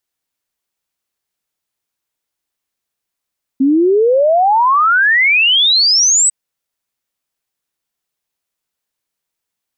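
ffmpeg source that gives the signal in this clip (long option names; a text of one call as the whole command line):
ffmpeg -f lavfi -i "aevalsrc='0.398*clip(min(t,2.7-t)/0.01,0,1)*sin(2*PI*260*2.7/log(8200/260)*(exp(log(8200/260)*t/2.7)-1))':duration=2.7:sample_rate=44100" out.wav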